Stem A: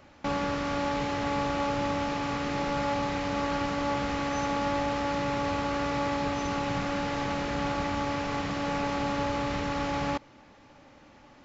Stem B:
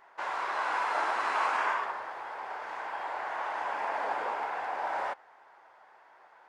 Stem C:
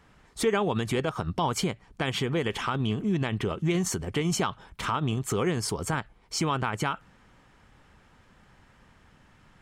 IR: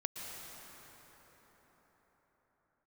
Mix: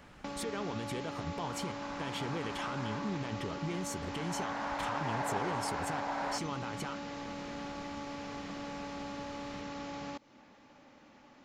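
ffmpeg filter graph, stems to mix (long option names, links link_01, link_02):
-filter_complex "[0:a]lowshelf=frequency=190:gain=-9.5,acrossover=split=730|3300[link_01][link_02][link_03];[link_01]acompressor=threshold=-40dB:ratio=4[link_04];[link_02]acompressor=threshold=-45dB:ratio=4[link_05];[link_03]acompressor=threshold=-50dB:ratio=4[link_06];[link_04][link_05][link_06]amix=inputs=3:normalize=0,equalizer=frequency=220:width=1.9:gain=6.5,volume=-4dB[link_07];[1:a]adelay=1250,volume=-4dB,afade=type=in:start_time=4.07:duration=0.42:silence=0.266073[link_08];[2:a]acompressor=threshold=-46dB:ratio=2,alimiter=level_in=8dB:limit=-24dB:level=0:latency=1,volume=-8dB,volume=1.5dB[link_09];[link_07][link_08][link_09]amix=inputs=3:normalize=0"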